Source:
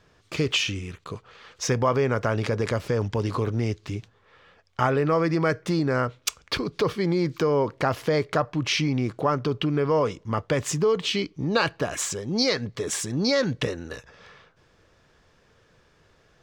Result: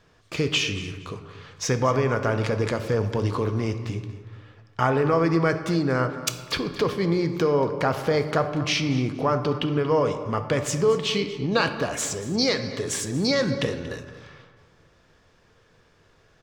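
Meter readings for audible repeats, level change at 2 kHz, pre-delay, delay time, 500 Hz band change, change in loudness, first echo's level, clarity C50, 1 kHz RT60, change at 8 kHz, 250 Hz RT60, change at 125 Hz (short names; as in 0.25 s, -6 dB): 2, +1.0 dB, 4 ms, 0.233 s, +1.0 dB, +1.0 dB, -16.5 dB, 9.0 dB, 1.5 s, +0.5 dB, 1.7 s, +1.0 dB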